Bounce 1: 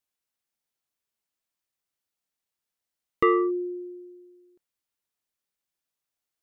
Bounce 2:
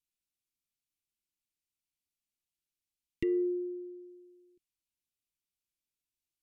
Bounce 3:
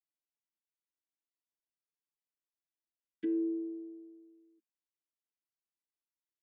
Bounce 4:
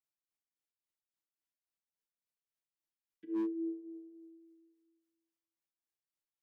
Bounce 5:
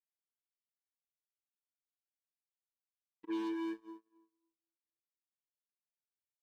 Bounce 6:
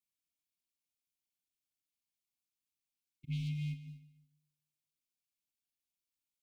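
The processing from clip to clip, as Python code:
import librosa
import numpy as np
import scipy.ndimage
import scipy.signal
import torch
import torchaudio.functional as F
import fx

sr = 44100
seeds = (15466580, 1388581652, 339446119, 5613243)

y1 = scipy.signal.sosfilt(scipy.signal.ellip(3, 1.0, 40, [350.0, 2300.0], 'bandstop', fs=sr, output='sos'), x)
y1 = fx.env_lowpass_down(y1, sr, base_hz=920.0, full_db=-27.0)
y1 = fx.low_shelf(y1, sr, hz=91.0, db=8.0)
y1 = F.gain(torch.from_numpy(y1), -4.5).numpy()
y2 = fx.chord_vocoder(y1, sr, chord='bare fifth', root=57)
y2 = y2 + 0.92 * np.pad(y2, (int(7.1 * sr / 1000.0), 0))[:len(y2)]
y3 = fx.tremolo_shape(y2, sr, shape='triangle', hz=3.6, depth_pct=100)
y3 = fx.room_shoebox(y3, sr, seeds[0], volume_m3=740.0, walls='mixed', distance_m=0.67)
y3 = fx.slew_limit(y3, sr, full_power_hz=9.2)
y4 = np.clip(y3, -10.0 ** (-38.0 / 20.0), 10.0 ** (-38.0 / 20.0))
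y4 = fx.rev_schroeder(y4, sr, rt60_s=1.5, comb_ms=30, drr_db=5.5)
y4 = fx.cheby_harmonics(y4, sr, harmonics=(7,), levels_db=(-17,), full_scale_db=-34.0)
y4 = F.gain(torch.from_numpy(y4), 3.0).numpy()
y5 = y4 * np.sin(2.0 * np.pi * 180.0 * np.arange(len(y4)) / sr)
y5 = fx.brickwall_bandstop(y5, sr, low_hz=360.0, high_hz=2100.0)
y5 = fx.echo_feedback(y5, sr, ms=148, feedback_pct=30, wet_db=-14.0)
y5 = F.gain(torch.from_numpy(y5), 6.0).numpy()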